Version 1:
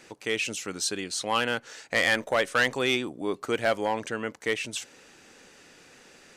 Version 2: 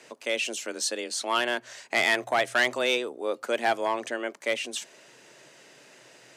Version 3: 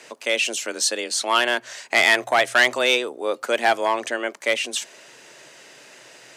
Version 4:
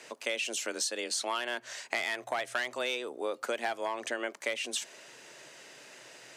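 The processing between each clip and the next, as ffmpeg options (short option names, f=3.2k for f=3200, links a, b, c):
-af "lowshelf=f=62:g=6.5,afreqshift=120"
-af "lowshelf=f=450:g=-6,volume=7.5dB"
-af "acompressor=threshold=-24dB:ratio=10,volume=-5dB"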